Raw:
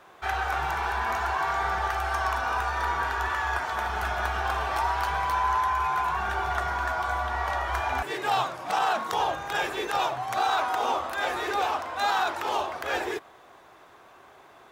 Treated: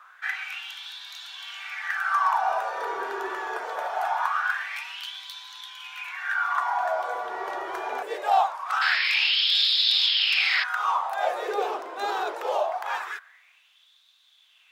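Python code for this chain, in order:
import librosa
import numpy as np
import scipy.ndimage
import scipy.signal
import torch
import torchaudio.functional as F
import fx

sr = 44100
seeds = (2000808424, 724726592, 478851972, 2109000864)

y = fx.spec_paint(x, sr, seeds[0], shape='noise', start_s=8.81, length_s=1.83, low_hz=350.0, high_hz=5400.0, level_db=-25.0)
y = fx.filter_lfo_highpass(y, sr, shape='sine', hz=0.23, low_hz=380.0, high_hz=3700.0, q=6.4)
y = F.gain(torch.from_numpy(y), -5.5).numpy()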